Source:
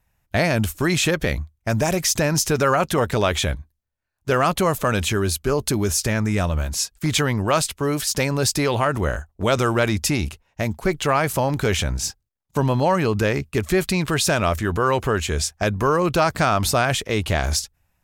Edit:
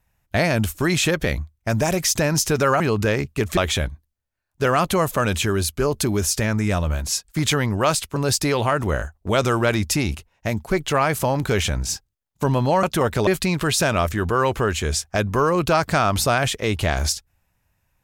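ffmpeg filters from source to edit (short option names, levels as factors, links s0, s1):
-filter_complex "[0:a]asplit=6[s0][s1][s2][s3][s4][s5];[s0]atrim=end=2.802[s6];[s1]atrim=start=12.968:end=13.742[s7];[s2]atrim=start=3.238:end=7.832[s8];[s3]atrim=start=8.298:end=12.972[s9];[s4]atrim=start=2.798:end=3.242[s10];[s5]atrim=start=13.738[s11];[s6][s7]acrossfade=d=0.004:c1=hsin:c2=hsin[s12];[s12][s8]acrossfade=d=0.004:c1=hsin:c2=hsin[s13];[s13][s9]acrossfade=d=0.004:c1=hsin:c2=hsin[s14];[s14][s10]acrossfade=d=0.004:c1=hsin:c2=hsin[s15];[s15][s11]acrossfade=d=0.004:c1=hsin:c2=hsin"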